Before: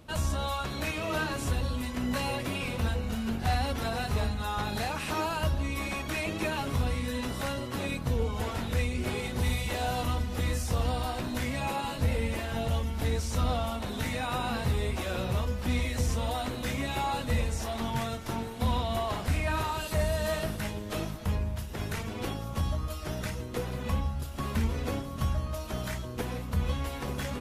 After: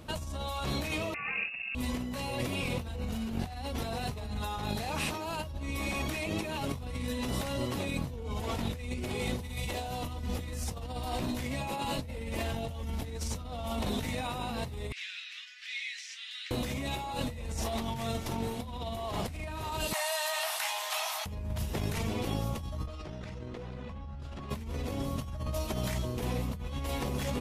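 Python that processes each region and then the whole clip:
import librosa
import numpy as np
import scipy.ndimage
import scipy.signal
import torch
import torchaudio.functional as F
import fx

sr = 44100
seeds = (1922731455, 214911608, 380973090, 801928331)

y = fx.chain(x, sr, fx.freq_invert(carrier_hz=2700),
    fx.highpass(hz=97.0, slope=12),
    fx.notch(hz=1000.0, q=6.7), at=(1.14, 1.75))
y = fx.chain(y, sr, fx.steep_highpass(hz=1700.0, slope=48),
    fx.air_absorb(metres=150.0), at=(14.92, 16.51))
y = fx.chain(y, sr, fx.steep_highpass(hz=730.0, slope=48),
    fx.env_flatten(amount_pct=70), at=(19.93, 21.26))
y = fx.chain(y, sr, fx.lowpass(hz=5400.0, slope=12),
    fx.high_shelf(hz=4200.0, db=-6.0),
    fx.env_flatten(amount_pct=100), at=(22.87, 24.5))
y = fx.over_compress(y, sr, threshold_db=-35.0, ratio=-1.0)
y = fx.dynamic_eq(y, sr, hz=1500.0, q=2.3, threshold_db=-55.0, ratio=4.0, max_db=-7)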